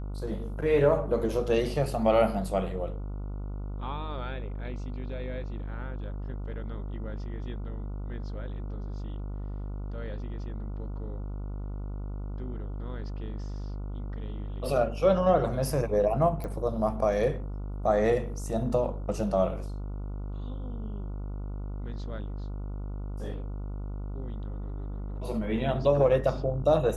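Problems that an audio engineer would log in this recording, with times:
buzz 50 Hz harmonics 29 -35 dBFS
16.44 s: pop -24 dBFS

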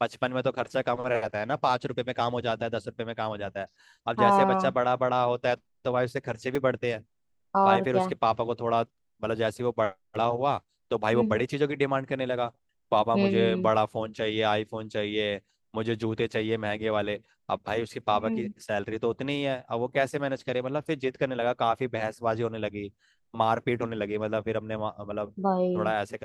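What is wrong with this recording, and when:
6.55 s: dropout 2.9 ms

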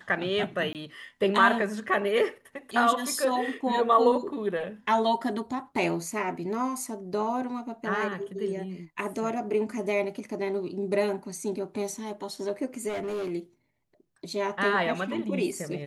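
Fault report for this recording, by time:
0.73–0.75 s: dropout 18 ms
12.88–13.31 s: clipped -28.5 dBFS

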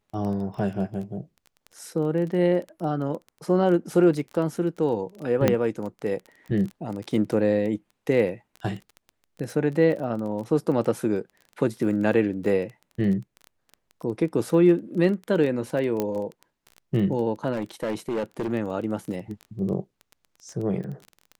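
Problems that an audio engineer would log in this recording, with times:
crackle 15 per s -31 dBFS
0.57 s: dropout 2.7 ms
5.48 s: pop -6 dBFS
12.46 s: dropout 2.4 ms
16.00 s: pop -12 dBFS
17.52–18.53 s: clipped -23 dBFS

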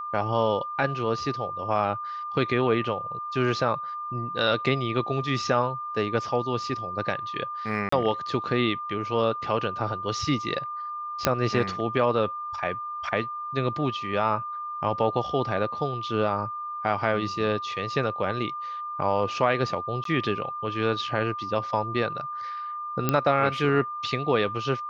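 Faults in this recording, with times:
whine 1.2 kHz -31 dBFS
7.89–7.92 s: dropout 34 ms
11.25 s: pop -4 dBFS
20.04–20.05 s: dropout 13 ms
23.09 s: pop -8 dBFS

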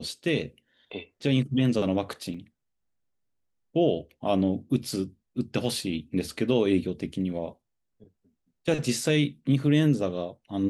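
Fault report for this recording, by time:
2.34 s: dropout 4.7 ms

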